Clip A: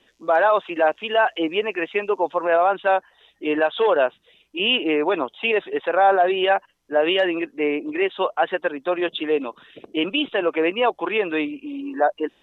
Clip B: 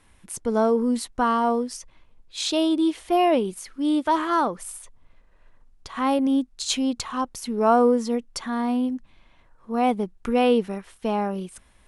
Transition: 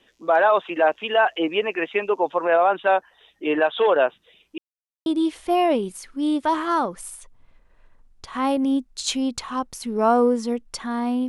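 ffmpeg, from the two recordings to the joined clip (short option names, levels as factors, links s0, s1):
-filter_complex "[0:a]apad=whole_dur=11.28,atrim=end=11.28,asplit=2[s0][s1];[s0]atrim=end=4.58,asetpts=PTS-STARTPTS,afade=t=out:st=4.576:d=0.004:c=hsin[s2];[s1]atrim=start=4.58:end=5.06,asetpts=PTS-STARTPTS,volume=0[s3];[1:a]atrim=start=2.68:end=8.9,asetpts=PTS-STARTPTS,afade=t=in:d=0.004:c=hsin[s4];[s2][s3][s4]concat=n=3:v=0:a=1"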